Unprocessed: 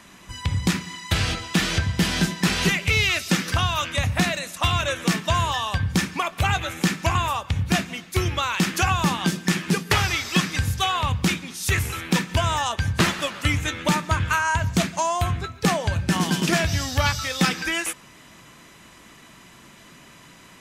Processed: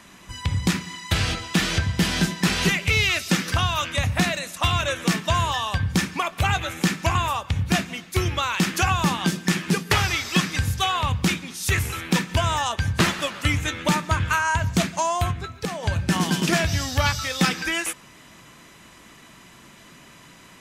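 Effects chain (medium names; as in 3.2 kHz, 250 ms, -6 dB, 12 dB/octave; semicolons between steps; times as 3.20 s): 15.31–15.83 s: compression 6:1, threshold -26 dBFS, peak gain reduction 10.5 dB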